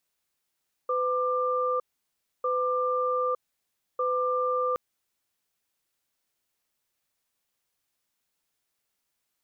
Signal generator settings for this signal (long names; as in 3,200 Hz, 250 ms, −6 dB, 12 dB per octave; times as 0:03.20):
tone pair in a cadence 504 Hz, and 1,190 Hz, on 0.91 s, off 0.64 s, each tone −26.5 dBFS 3.87 s